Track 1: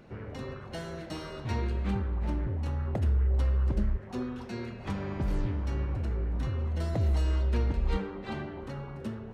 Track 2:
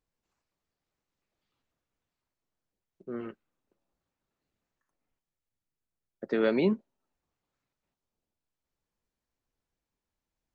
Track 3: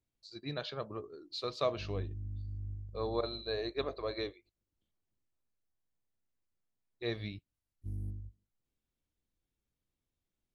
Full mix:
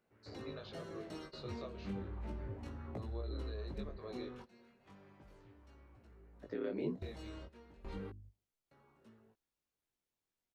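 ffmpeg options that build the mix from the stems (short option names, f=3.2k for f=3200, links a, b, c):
-filter_complex "[0:a]volume=0.5dB,asplit=3[a][b][c];[a]atrim=end=8.1,asetpts=PTS-STARTPTS,afade=t=out:st=8.096:d=0.004:c=hsin[d];[b]atrim=start=8.1:end=8.71,asetpts=PTS-STARTPTS,volume=0[e];[c]atrim=start=8.71,asetpts=PTS-STARTPTS,afade=t=in:d=0.004:c=hsin[f];[d][e][f]concat=n=3:v=0:a=1[g];[1:a]aeval=exprs='val(0)*sin(2*PI*39*n/s)':c=same,adelay=200,volume=-1.5dB[h];[2:a]volume=-0.5dB,asplit=2[i][j];[j]apad=whole_len=411656[k];[g][k]sidechaingate=range=-20dB:threshold=-54dB:ratio=16:detection=peak[l];[l][i]amix=inputs=2:normalize=0,acompressor=threshold=-29dB:ratio=3,volume=0dB[m];[h][m]amix=inputs=2:normalize=0,lowshelf=f=190:g=-12,acrossover=split=450[n][o];[o]acompressor=threshold=-55dB:ratio=2[p];[n][p]amix=inputs=2:normalize=0,flanger=delay=17:depth=4.8:speed=0.34"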